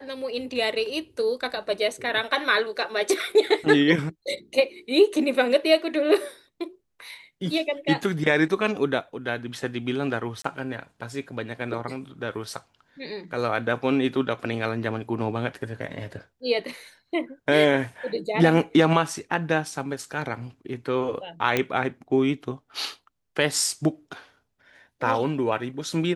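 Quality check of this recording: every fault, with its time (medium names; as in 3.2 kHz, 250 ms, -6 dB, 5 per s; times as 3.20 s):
10.42–10.44 s: dropout 24 ms
21.57 s: pop -8 dBFS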